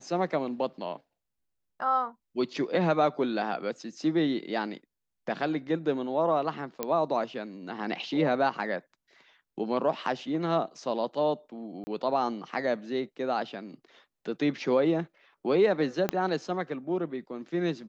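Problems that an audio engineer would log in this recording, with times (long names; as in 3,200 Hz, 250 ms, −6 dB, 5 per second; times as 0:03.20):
0:06.83: click −14 dBFS
0:11.84–0:11.87: drop-out 30 ms
0:16.09: click −12 dBFS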